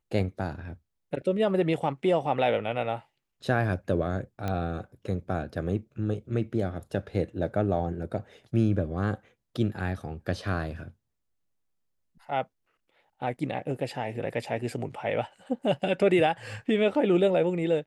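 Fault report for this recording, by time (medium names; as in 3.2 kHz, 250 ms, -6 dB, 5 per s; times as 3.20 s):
4.48 s: pop -18 dBFS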